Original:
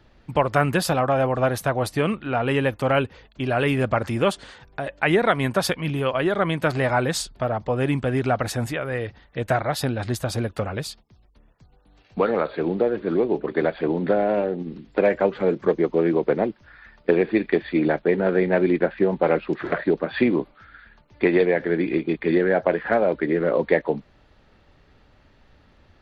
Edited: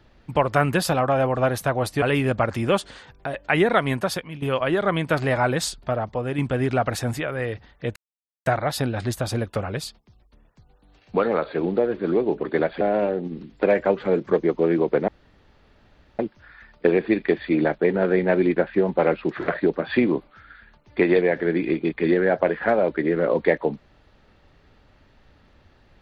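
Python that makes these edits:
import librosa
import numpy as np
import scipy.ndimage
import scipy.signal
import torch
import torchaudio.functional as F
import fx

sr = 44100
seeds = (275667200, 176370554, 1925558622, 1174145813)

y = fx.edit(x, sr, fx.cut(start_s=2.02, length_s=1.53),
    fx.fade_out_to(start_s=5.39, length_s=0.56, floor_db=-13.5),
    fx.fade_out_to(start_s=7.44, length_s=0.47, floor_db=-6.0),
    fx.insert_silence(at_s=9.49, length_s=0.5),
    fx.cut(start_s=13.84, length_s=0.32),
    fx.insert_room_tone(at_s=16.43, length_s=1.11), tone=tone)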